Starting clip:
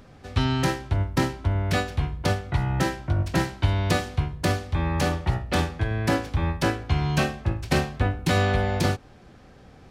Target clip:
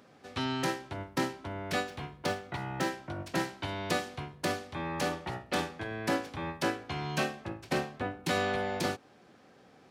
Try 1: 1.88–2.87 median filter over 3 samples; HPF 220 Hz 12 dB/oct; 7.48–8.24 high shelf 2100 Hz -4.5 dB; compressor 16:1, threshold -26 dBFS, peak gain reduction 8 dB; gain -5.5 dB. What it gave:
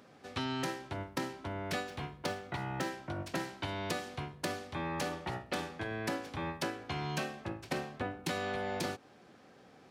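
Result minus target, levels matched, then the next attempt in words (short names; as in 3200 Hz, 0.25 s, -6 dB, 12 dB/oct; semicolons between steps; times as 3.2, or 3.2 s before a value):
compressor: peak gain reduction +8 dB
1.88–2.87 median filter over 3 samples; HPF 220 Hz 12 dB/oct; 7.48–8.24 high shelf 2100 Hz -4.5 dB; gain -5.5 dB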